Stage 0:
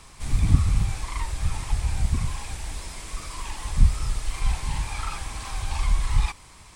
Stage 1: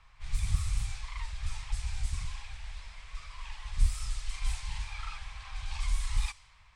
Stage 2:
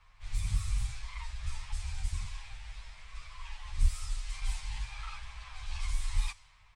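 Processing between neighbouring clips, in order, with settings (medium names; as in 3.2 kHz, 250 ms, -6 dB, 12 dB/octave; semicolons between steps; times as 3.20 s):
amplifier tone stack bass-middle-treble 10-0-10; level-controlled noise filter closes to 1.9 kHz, open at -20.5 dBFS; trim -2.5 dB
endless flanger 9.8 ms +0.48 Hz; trim +1 dB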